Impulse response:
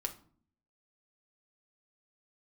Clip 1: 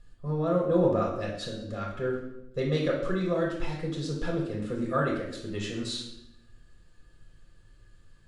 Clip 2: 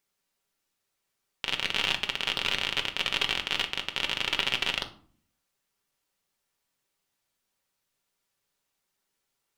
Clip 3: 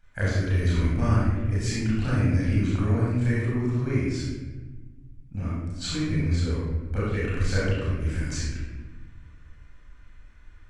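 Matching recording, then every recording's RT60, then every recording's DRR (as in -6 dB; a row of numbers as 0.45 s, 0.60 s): 2; 0.80 s, 0.50 s, 1.3 s; -3.0 dB, 4.0 dB, -9.5 dB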